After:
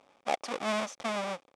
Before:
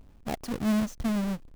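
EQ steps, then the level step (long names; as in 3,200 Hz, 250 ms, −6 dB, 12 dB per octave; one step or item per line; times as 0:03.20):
loudspeaker in its box 450–9,300 Hz, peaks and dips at 550 Hz +7 dB, 800 Hz +7 dB, 1,200 Hz +7 dB, 2,300 Hz +8 dB, 3,500 Hz +6 dB, 5,500 Hz +3 dB
notch filter 4,100 Hz, Q 22
0.0 dB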